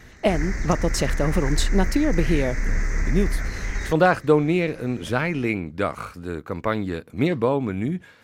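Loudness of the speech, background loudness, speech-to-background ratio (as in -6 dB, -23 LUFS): -24.0 LUFS, -29.0 LUFS, 5.0 dB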